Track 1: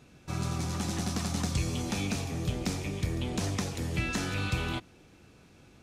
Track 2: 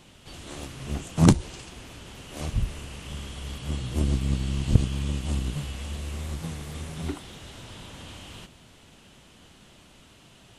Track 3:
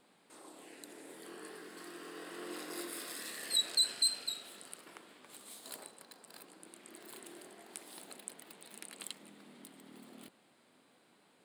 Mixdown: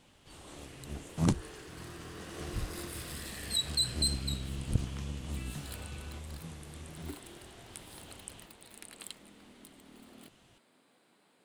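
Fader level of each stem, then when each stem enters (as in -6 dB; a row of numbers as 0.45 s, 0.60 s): -17.5 dB, -11.0 dB, -0.5 dB; 1.40 s, 0.00 s, 0.00 s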